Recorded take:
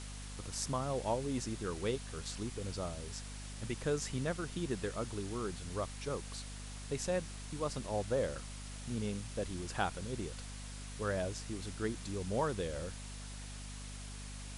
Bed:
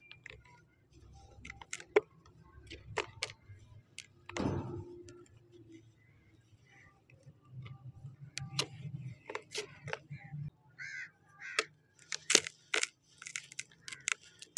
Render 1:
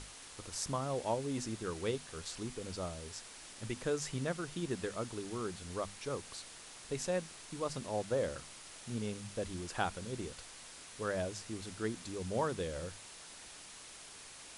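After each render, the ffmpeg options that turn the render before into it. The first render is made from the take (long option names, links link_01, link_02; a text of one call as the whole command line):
ffmpeg -i in.wav -af "bandreject=frequency=50:width_type=h:width=6,bandreject=frequency=100:width_type=h:width=6,bandreject=frequency=150:width_type=h:width=6,bandreject=frequency=200:width_type=h:width=6,bandreject=frequency=250:width_type=h:width=6" out.wav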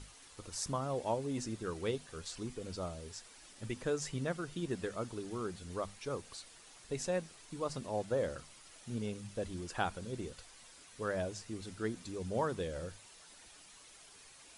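ffmpeg -i in.wav -af "afftdn=noise_reduction=8:noise_floor=-52" out.wav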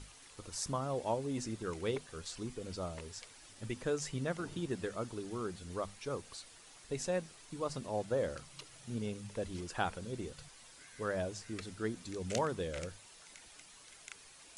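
ffmpeg -i in.wav -i bed.wav -filter_complex "[1:a]volume=-16.5dB[link_01];[0:a][link_01]amix=inputs=2:normalize=0" out.wav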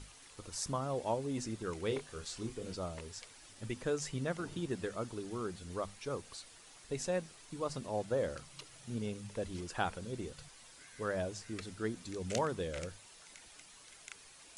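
ffmpeg -i in.wav -filter_complex "[0:a]asettb=1/sr,asplit=3[link_01][link_02][link_03];[link_01]atrim=end=1.884[link_04];[link_02]atrim=start=1.88:end=2.75,asetpts=PTS-STARTPTS,afade=type=in:duration=0.004:curve=qsin,afade=type=out:start_time=0.866:duration=0.004:curve=qsin,asplit=2[link_05][link_06];[link_06]adelay=27,volume=-7dB[link_07];[link_05][link_07]amix=inputs=2:normalize=0,atrim=end_sample=38367[link_08];[link_03]atrim=start=2.746[link_09];[link_04][link_08]acrossfade=duration=0.004:curve1=hsin:curve2=qsin[link_10];[link_10][link_09]acrossfade=duration=0.004:curve1=qsin:curve2=hsin" out.wav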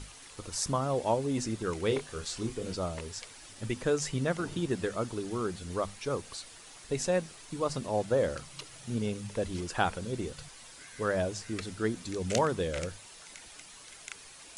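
ffmpeg -i in.wav -af "volume=6.5dB" out.wav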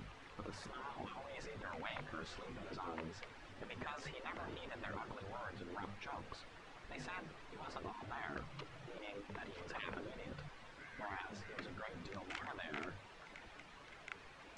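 ffmpeg -i in.wav -af "afftfilt=real='re*lt(hypot(re,im),0.0447)':imag='im*lt(hypot(re,im),0.0447)':win_size=1024:overlap=0.75,lowpass=2000" out.wav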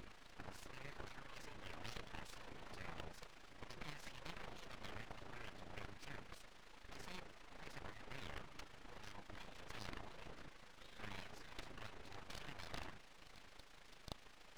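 ffmpeg -i in.wav -af "aeval=exprs='abs(val(0))':channel_layout=same,tremolo=f=27:d=0.571" out.wav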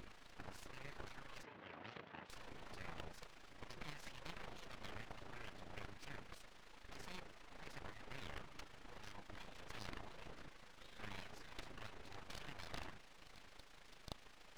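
ffmpeg -i in.wav -filter_complex "[0:a]asettb=1/sr,asplit=3[link_01][link_02][link_03];[link_01]atrim=end=1.434[link_04];[link_02]atrim=start=1.43:end=2.3,asetpts=PTS-STARTPTS,afade=type=in:duration=0.004:curve=qsin,afade=type=out:start_time=0.866:duration=0.004:curve=qsin,highpass=140,lowpass=2600[link_05];[link_03]atrim=start=2.296[link_06];[link_04][link_05]acrossfade=duration=0.004:curve1=hsin:curve2=qsin[link_07];[link_07][link_06]acrossfade=duration=0.004:curve1=qsin:curve2=hsin" out.wav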